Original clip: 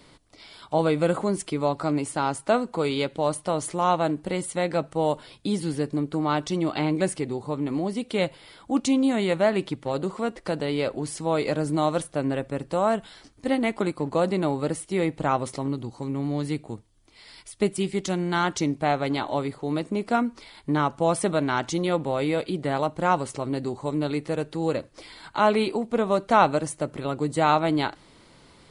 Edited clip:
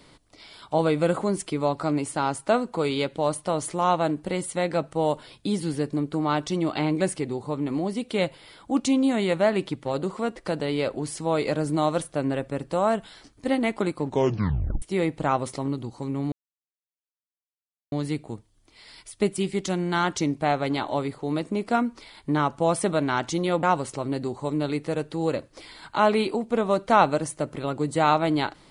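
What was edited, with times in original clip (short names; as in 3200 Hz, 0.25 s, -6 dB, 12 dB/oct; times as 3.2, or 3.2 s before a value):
14.05 tape stop 0.77 s
16.32 insert silence 1.60 s
22.03–23.04 cut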